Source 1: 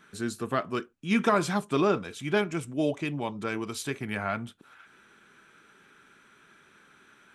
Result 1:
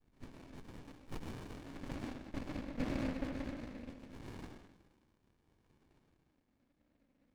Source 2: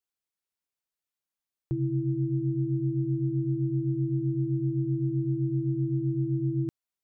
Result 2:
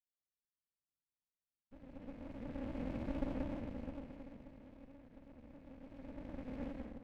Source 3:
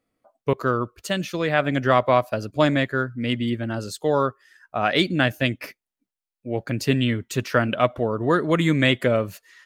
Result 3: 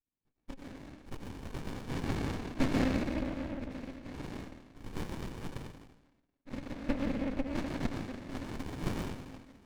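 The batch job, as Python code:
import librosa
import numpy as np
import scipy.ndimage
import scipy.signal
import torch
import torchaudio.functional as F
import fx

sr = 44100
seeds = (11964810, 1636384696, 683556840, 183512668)

y = fx.wah_lfo(x, sr, hz=0.25, low_hz=510.0, high_hz=2700.0, q=3.4)
y = fx.noise_vocoder(y, sr, seeds[0], bands=3)
y = fx.vowel_filter(y, sr, vowel='i')
y = fx.rev_freeverb(y, sr, rt60_s=1.3, hf_ratio=0.5, predelay_ms=65, drr_db=-2.0)
y = fx.running_max(y, sr, window=65)
y = y * 10.0 ** (10.5 / 20.0)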